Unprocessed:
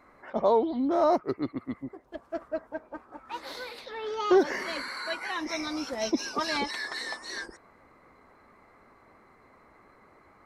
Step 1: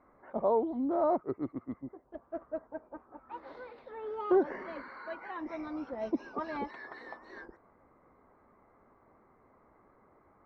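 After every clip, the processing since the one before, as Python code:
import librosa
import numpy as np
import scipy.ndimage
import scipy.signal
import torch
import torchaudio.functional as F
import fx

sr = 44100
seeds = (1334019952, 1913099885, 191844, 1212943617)

y = scipy.signal.sosfilt(scipy.signal.butter(2, 1200.0, 'lowpass', fs=sr, output='sos'), x)
y = y * librosa.db_to_amplitude(-4.5)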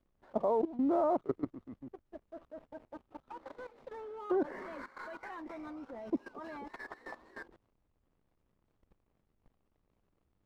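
y = fx.backlash(x, sr, play_db=-53.5)
y = fx.dmg_noise_colour(y, sr, seeds[0], colour='brown', level_db=-71.0)
y = fx.level_steps(y, sr, step_db=16)
y = y * librosa.db_to_amplitude(3.5)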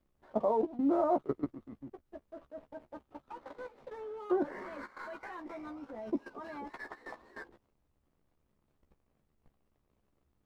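y = fx.doubler(x, sr, ms=14.0, db=-7.0)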